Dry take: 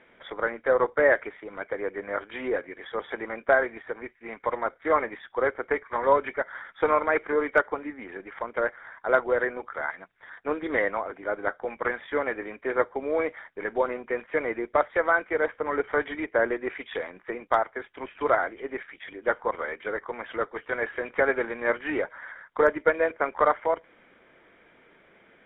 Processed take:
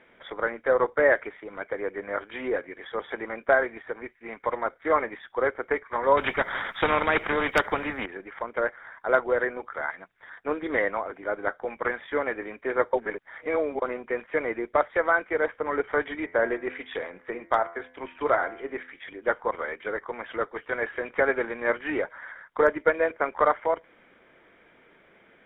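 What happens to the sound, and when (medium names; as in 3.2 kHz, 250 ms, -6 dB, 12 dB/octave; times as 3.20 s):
6.17–8.06 s: spectrum-flattening compressor 2:1
12.93–13.82 s: reverse
16.18–19.05 s: de-hum 85.07 Hz, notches 27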